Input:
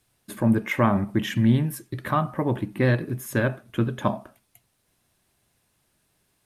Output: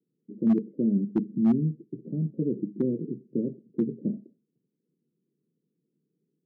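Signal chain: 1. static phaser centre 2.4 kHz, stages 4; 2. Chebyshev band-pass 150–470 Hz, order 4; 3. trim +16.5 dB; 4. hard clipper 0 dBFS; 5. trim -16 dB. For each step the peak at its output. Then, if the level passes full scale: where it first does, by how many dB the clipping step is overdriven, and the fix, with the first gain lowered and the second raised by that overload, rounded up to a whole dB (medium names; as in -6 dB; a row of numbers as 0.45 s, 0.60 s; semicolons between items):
-9.0 dBFS, -13.0 dBFS, +3.5 dBFS, 0.0 dBFS, -16.0 dBFS; step 3, 3.5 dB; step 3 +12.5 dB, step 5 -12 dB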